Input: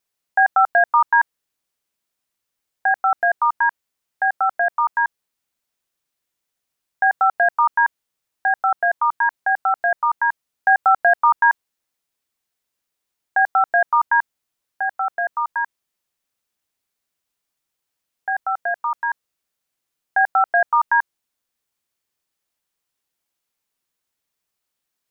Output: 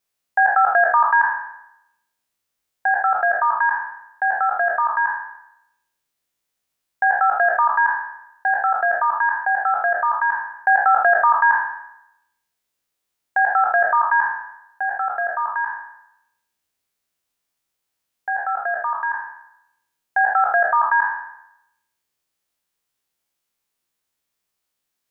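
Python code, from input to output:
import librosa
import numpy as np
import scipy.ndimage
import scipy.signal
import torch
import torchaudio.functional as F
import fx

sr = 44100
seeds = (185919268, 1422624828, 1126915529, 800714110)

y = fx.spec_trails(x, sr, decay_s=0.81)
y = y * 10.0 ** (-1.0 / 20.0)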